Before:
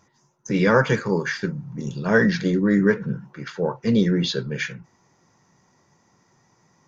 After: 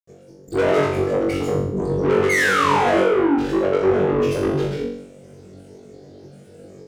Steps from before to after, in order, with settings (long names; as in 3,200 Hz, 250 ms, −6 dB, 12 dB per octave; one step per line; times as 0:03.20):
lower of the sound and its delayed copy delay 1.9 ms
granular cloud, pitch spread up and down by 7 semitones
low shelf with overshoot 690 Hz +14 dB, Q 3
sound drawn into the spectrogram fall, 0:02.29–0:03.38, 250–2,200 Hz −5 dBFS
soft clipping −12.5 dBFS, distortion −4 dB
brickwall limiter −25 dBFS, peak gain reduction 12.5 dB
on a send: flutter between parallel walls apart 3.6 metres, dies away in 0.65 s
on the sum: dynamic equaliser 4,400 Hz, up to −6 dB, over −45 dBFS, Q 1.4
high-pass filter 110 Hz 6 dB per octave
level +5.5 dB